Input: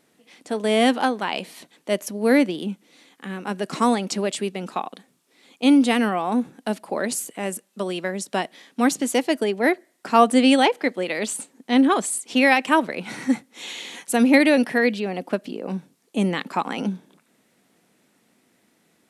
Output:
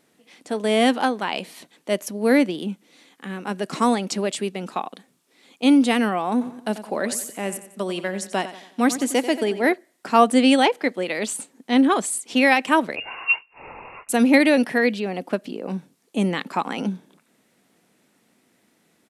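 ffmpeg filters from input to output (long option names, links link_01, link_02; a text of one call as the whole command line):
ffmpeg -i in.wav -filter_complex "[0:a]asplit=3[link_01][link_02][link_03];[link_01]afade=type=out:start_time=6.4:duration=0.02[link_04];[link_02]aecho=1:1:90|180|270|360:0.224|0.0963|0.0414|0.0178,afade=type=in:start_time=6.4:duration=0.02,afade=type=out:start_time=9.72:duration=0.02[link_05];[link_03]afade=type=in:start_time=9.72:duration=0.02[link_06];[link_04][link_05][link_06]amix=inputs=3:normalize=0,asettb=1/sr,asplit=3[link_07][link_08][link_09];[link_07]atrim=end=12.964[link_10];[link_08]atrim=start=12.96:end=14.09,asetpts=PTS-STARTPTS,afade=type=in:duration=0.004:curve=qsin,afade=type=out:start_time=1.126:duration=0.004:curve=qsin,lowpass=frequency=2600:width_type=q:width=0.5098,lowpass=frequency=2600:width_type=q:width=0.6013,lowpass=frequency=2600:width_type=q:width=0.9,lowpass=frequency=2600:width_type=q:width=2.563,afreqshift=-3000[link_11];[link_09]atrim=start=14.086[link_12];[link_10][link_11]acrossfade=duration=0.004:curve1=hsin:curve2=qsin[link_13];[link_13][link_12]acrossfade=duration=0.004:curve1=qsin:curve2=hsin" out.wav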